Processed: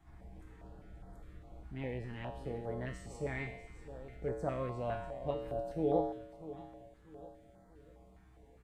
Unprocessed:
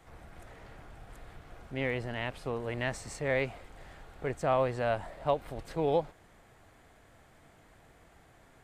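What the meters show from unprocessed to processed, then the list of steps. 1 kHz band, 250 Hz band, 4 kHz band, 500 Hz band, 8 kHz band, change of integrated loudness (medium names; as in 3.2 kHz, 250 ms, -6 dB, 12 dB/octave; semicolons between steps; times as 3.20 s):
-7.5 dB, -2.0 dB, -13.0 dB, -5.5 dB, under -10 dB, -6.5 dB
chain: tilt shelf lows +6.5 dB; vibrato 8.3 Hz 11 cents; feedback comb 63 Hz, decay 0.89 s, harmonics odd, mix 90%; on a send: feedback delay 642 ms, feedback 41%, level -14 dB; on the sum: step-sequenced notch 4.9 Hz 500–2700 Hz; trim +7.5 dB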